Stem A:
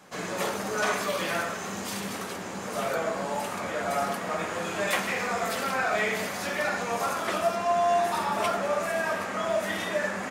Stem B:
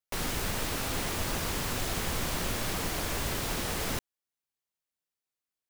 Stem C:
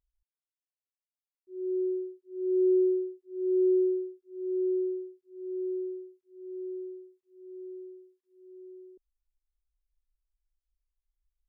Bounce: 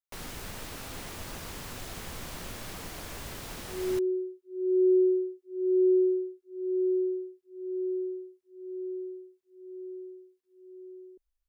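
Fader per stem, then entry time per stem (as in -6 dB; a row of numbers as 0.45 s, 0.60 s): mute, -8.5 dB, +1.5 dB; mute, 0.00 s, 2.20 s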